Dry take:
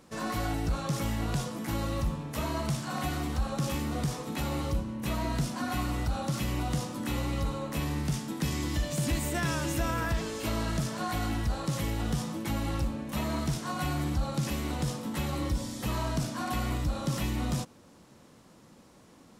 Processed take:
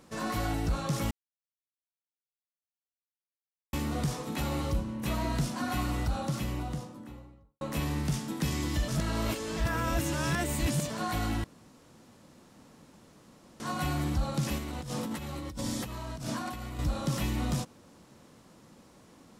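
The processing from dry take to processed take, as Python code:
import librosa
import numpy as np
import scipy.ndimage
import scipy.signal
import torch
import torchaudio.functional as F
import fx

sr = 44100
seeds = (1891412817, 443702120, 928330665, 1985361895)

y = fx.studio_fade_out(x, sr, start_s=5.99, length_s=1.62)
y = fx.over_compress(y, sr, threshold_db=-37.0, ratio=-1.0, at=(14.58, 16.79))
y = fx.edit(y, sr, fx.silence(start_s=1.11, length_s=2.62),
    fx.reverse_span(start_s=8.88, length_s=2.02),
    fx.room_tone_fill(start_s=11.44, length_s=2.16), tone=tone)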